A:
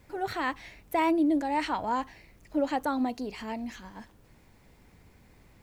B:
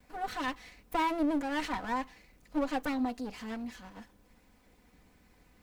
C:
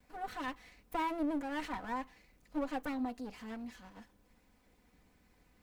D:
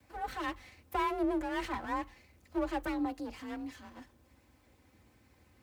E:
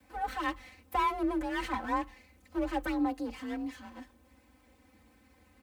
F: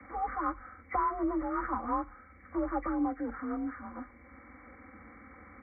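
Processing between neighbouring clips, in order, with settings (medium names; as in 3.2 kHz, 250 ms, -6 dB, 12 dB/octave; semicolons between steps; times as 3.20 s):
comb filter that takes the minimum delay 4 ms; trim -3 dB
dynamic bell 5 kHz, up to -4 dB, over -53 dBFS, Q 0.77; trim -5 dB
frequency shift +37 Hz; trim +3 dB
comb 3.9 ms, depth 73%
knee-point frequency compression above 1.1 kHz 4:1; three bands compressed up and down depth 40%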